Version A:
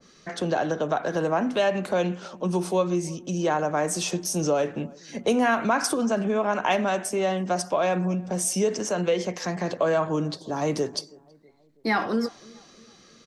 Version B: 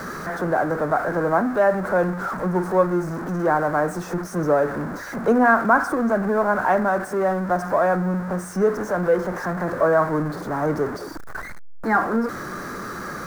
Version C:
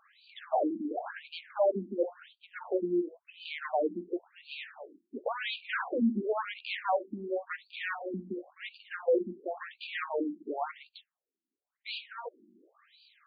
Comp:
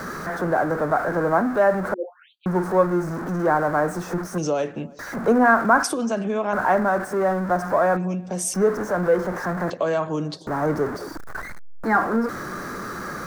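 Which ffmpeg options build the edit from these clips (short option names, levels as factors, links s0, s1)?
-filter_complex "[0:a]asplit=4[s0][s1][s2][s3];[1:a]asplit=6[s4][s5][s6][s7][s8][s9];[s4]atrim=end=1.942[s10];[2:a]atrim=start=1.938:end=2.462[s11];[s5]atrim=start=2.458:end=4.382[s12];[s0]atrim=start=4.378:end=4.992[s13];[s6]atrim=start=4.988:end=5.832[s14];[s1]atrim=start=5.828:end=6.532[s15];[s7]atrim=start=6.528:end=7.972[s16];[s2]atrim=start=7.968:end=8.542[s17];[s8]atrim=start=8.538:end=9.702[s18];[s3]atrim=start=9.698:end=10.472[s19];[s9]atrim=start=10.468[s20];[s10][s11]acrossfade=d=0.004:c1=hsin:c2=hsin[s21];[s21][s12]acrossfade=d=0.004:c1=hsin:c2=hsin[s22];[s22][s13]acrossfade=d=0.004:c1=hsin:c2=hsin[s23];[s23][s14]acrossfade=d=0.004:c1=hsin:c2=hsin[s24];[s24][s15]acrossfade=d=0.004:c1=hsin:c2=hsin[s25];[s25][s16]acrossfade=d=0.004:c1=hsin:c2=hsin[s26];[s26][s17]acrossfade=d=0.004:c1=hsin:c2=hsin[s27];[s27][s18]acrossfade=d=0.004:c1=hsin:c2=hsin[s28];[s28][s19]acrossfade=d=0.004:c1=hsin:c2=hsin[s29];[s29][s20]acrossfade=d=0.004:c1=hsin:c2=hsin"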